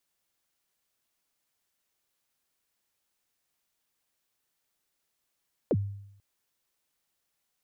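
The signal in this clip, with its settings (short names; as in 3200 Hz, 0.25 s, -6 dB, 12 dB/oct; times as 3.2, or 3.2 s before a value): kick drum length 0.49 s, from 600 Hz, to 100 Hz, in 47 ms, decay 0.77 s, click off, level -20 dB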